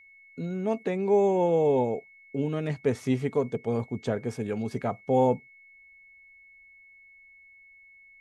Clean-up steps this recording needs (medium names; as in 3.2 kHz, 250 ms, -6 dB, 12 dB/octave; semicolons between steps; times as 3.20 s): band-stop 2.2 kHz, Q 30